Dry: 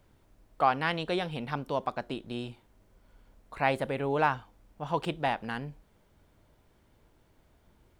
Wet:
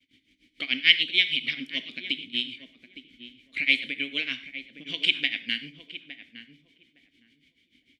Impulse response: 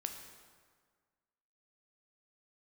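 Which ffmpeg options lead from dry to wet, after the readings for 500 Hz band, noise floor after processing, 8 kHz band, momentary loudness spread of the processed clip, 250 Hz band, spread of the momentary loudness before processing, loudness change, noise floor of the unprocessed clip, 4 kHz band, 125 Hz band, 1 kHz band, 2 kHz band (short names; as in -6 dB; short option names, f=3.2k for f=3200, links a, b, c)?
-16.5 dB, -71 dBFS, n/a, 21 LU, -3.5 dB, 12 LU, +6.5 dB, -66 dBFS, +18.5 dB, -15.0 dB, under -25 dB, +10.0 dB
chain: -filter_complex "[0:a]agate=range=-33dB:threshold=-58dB:ratio=3:detection=peak,highshelf=f=4.2k:g=-9,tremolo=f=6.7:d=0.97,acrossover=split=570[a][b];[a]acompressor=threshold=-46dB:ratio=6[c];[b]aexciter=amount=6.9:drive=9:freq=2k[d];[c][d]amix=inputs=2:normalize=0,asplit=3[e][f][g];[e]bandpass=f=270:t=q:w=8,volume=0dB[h];[f]bandpass=f=2.29k:t=q:w=8,volume=-6dB[i];[g]bandpass=f=3.01k:t=q:w=8,volume=-9dB[j];[h][i][j]amix=inputs=3:normalize=0,lowshelf=f=110:g=6.5,asplit=2[k][l];[l]adelay=862,lowpass=f=1.3k:p=1,volume=-10dB,asplit=2[m][n];[n]adelay=862,lowpass=f=1.3k:p=1,volume=0.19,asplit=2[o][p];[p]adelay=862,lowpass=f=1.3k:p=1,volume=0.19[q];[k][m][o][q]amix=inputs=4:normalize=0,asplit=2[r][s];[1:a]atrim=start_sample=2205,afade=t=out:st=0.14:d=0.01,atrim=end_sample=6615,asetrate=33516,aresample=44100[t];[s][t]afir=irnorm=-1:irlink=0,volume=4dB[u];[r][u]amix=inputs=2:normalize=0,volume=6.5dB"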